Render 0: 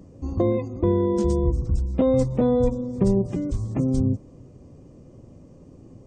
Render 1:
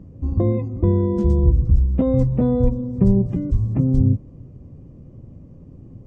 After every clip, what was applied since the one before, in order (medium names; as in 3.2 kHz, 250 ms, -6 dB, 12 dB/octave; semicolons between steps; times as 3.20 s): tone controls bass +11 dB, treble -12 dB; trim -3 dB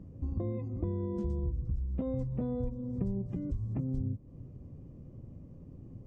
compression 4:1, threshold -25 dBFS, peak gain reduction 13 dB; trim -7 dB